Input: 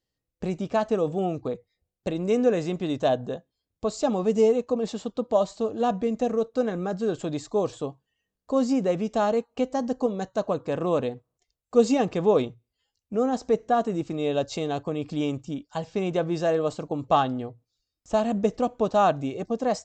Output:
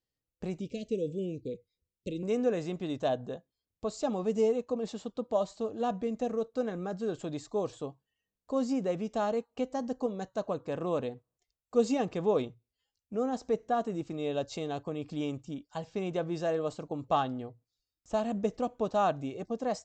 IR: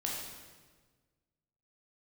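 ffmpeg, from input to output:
-filter_complex "[0:a]asettb=1/sr,asplit=3[link_01][link_02][link_03];[link_01]atrim=end=0.604[link_04];[link_02]atrim=start=0.6:end=2.23,asetpts=PTS-STARTPTS,afade=type=in:duration=0.004:curve=qsin,afade=type=out:start_time=1.626:duration=0.004:curve=qsin,asuperstop=centerf=1100:order=12:qfactor=0.64[link_05];[link_03]atrim=start=2.226[link_06];[link_04][link_05]acrossfade=duration=0.004:curve1=hsin:curve2=qsin[link_07];[link_07][link_06]acrossfade=duration=0.004:curve1=qsin:curve2=hsin,volume=-7dB"

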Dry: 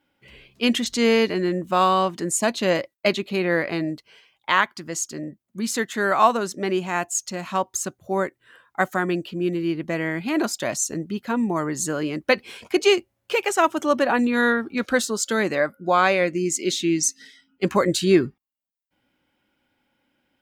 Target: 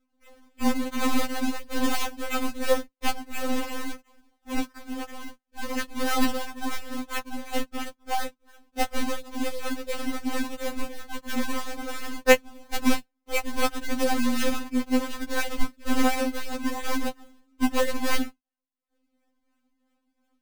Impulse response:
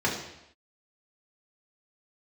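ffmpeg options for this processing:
-af "aeval=exprs='if(lt(val(0),0),0.447*val(0),val(0))':channel_layout=same,acrusher=samples=42:mix=1:aa=0.000001:lfo=1:lforange=67.2:lforate=2.9,afftfilt=real='re*3.46*eq(mod(b,12),0)':imag='im*3.46*eq(mod(b,12),0)':win_size=2048:overlap=0.75"

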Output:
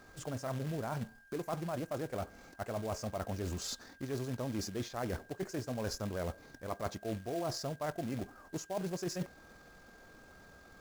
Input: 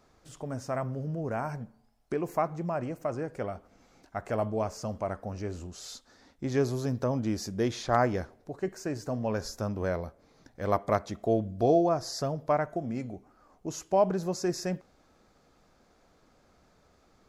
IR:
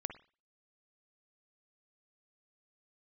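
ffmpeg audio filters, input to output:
-af "areverse,acompressor=threshold=-40dB:ratio=10,areverse,aeval=exprs='val(0)+0.000562*sin(2*PI*1600*n/s)':channel_layout=same,acrusher=bits=3:mode=log:mix=0:aa=0.000001,atempo=1.6,volume=5.5dB"

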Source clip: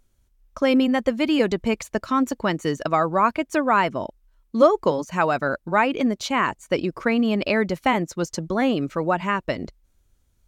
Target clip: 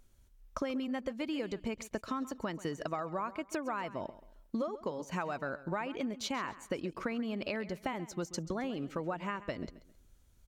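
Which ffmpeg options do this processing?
ffmpeg -i in.wav -filter_complex "[0:a]acompressor=threshold=-33dB:ratio=12,asplit=2[link_01][link_02];[link_02]aecho=0:1:134|268|402:0.158|0.0491|0.0152[link_03];[link_01][link_03]amix=inputs=2:normalize=0" out.wav

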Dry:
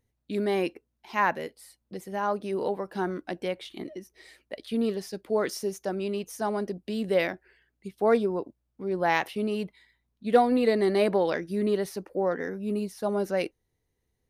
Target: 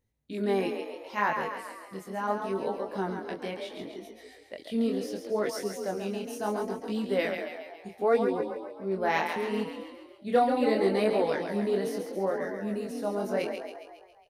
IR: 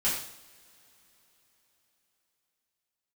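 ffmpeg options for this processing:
-filter_complex "[0:a]asplit=8[link_01][link_02][link_03][link_04][link_05][link_06][link_07][link_08];[link_02]adelay=137,afreqshift=35,volume=-6.5dB[link_09];[link_03]adelay=274,afreqshift=70,volume=-11.5dB[link_10];[link_04]adelay=411,afreqshift=105,volume=-16.6dB[link_11];[link_05]adelay=548,afreqshift=140,volume=-21.6dB[link_12];[link_06]adelay=685,afreqshift=175,volume=-26.6dB[link_13];[link_07]adelay=822,afreqshift=210,volume=-31.7dB[link_14];[link_08]adelay=959,afreqshift=245,volume=-36.7dB[link_15];[link_01][link_09][link_10][link_11][link_12][link_13][link_14][link_15]amix=inputs=8:normalize=0,flanger=delay=18.5:depth=7.8:speed=0.72"

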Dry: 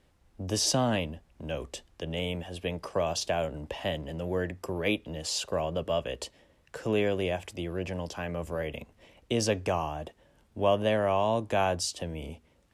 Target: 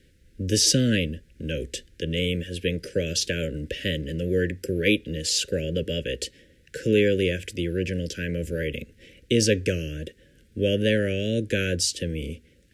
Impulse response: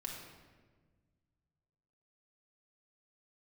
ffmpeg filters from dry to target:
-af "asuperstop=centerf=900:order=12:qfactor=0.91,volume=7.5dB"

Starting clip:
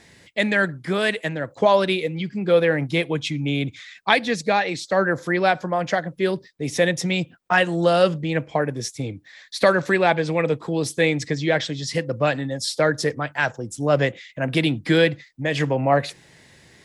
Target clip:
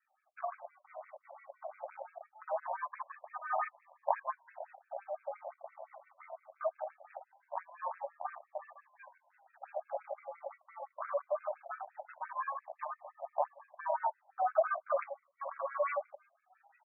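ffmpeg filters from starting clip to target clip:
ffmpeg -i in.wav -filter_complex "[0:a]asplit=3[link_01][link_02][link_03];[link_01]bandpass=frequency=270:width_type=q:width=8,volume=0dB[link_04];[link_02]bandpass=frequency=2290:width_type=q:width=8,volume=-6dB[link_05];[link_03]bandpass=frequency=3010:width_type=q:width=8,volume=-9dB[link_06];[link_04][link_05][link_06]amix=inputs=3:normalize=0,aecho=1:1:1098|2196|3294|4392:0.133|0.0693|0.0361|0.0188,asplit=2[link_07][link_08];[link_08]acompressor=threshold=-45dB:ratio=16,volume=1dB[link_09];[link_07][link_09]amix=inputs=2:normalize=0,acrusher=samples=41:mix=1:aa=0.000001:lfo=1:lforange=24.6:lforate=0.21,asettb=1/sr,asplit=3[link_10][link_11][link_12];[link_10]atrim=end=13.224[link_13];[link_11]atrim=start=13.22:end=14.93,asetpts=PTS-STARTPTS,afade=type=in:duration=0.004:curve=qsin,afade=type=out:start_time=1.706:duration=0.004:curve=qsin,tiltshelf=frequency=1200:gain=8[link_14];[link_12]atrim=start=14.926[link_15];[link_13][link_14]acrossfade=duration=0.004:curve1=hsin:curve2=qsin[link_16];[link_16][link_15]acrossfade=duration=0.004:curve1=qsin:curve2=hsin,afwtdn=0.0178,aemphasis=mode=reproduction:type=75fm,bandreject=frequency=1400:width=9.2,afftfilt=real='re*between(b*sr/1024,740*pow(1900/740,0.5+0.5*sin(2*PI*5.8*pts/sr))/1.41,740*pow(1900/740,0.5+0.5*sin(2*PI*5.8*pts/sr))*1.41)':imag='im*between(b*sr/1024,740*pow(1900/740,0.5+0.5*sin(2*PI*5.8*pts/sr))/1.41,740*pow(1900/740,0.5+0.5*sin(2*PI*5.8*pts/sr))*1.41)':win_size=1024:overlap=0.75,volume=8dB" out.wav

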